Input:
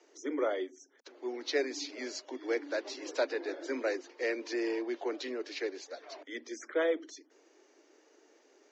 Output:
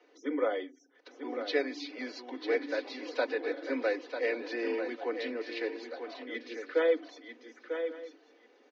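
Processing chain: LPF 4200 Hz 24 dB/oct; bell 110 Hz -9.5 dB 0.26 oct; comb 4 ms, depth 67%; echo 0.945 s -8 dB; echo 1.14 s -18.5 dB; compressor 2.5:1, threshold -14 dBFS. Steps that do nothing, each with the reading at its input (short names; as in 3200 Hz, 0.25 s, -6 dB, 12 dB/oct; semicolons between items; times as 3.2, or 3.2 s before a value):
bell 110 Hz: input band starts at 210 Hz; compressor, threshold -14 dBFS: input peak -15.5 dBFS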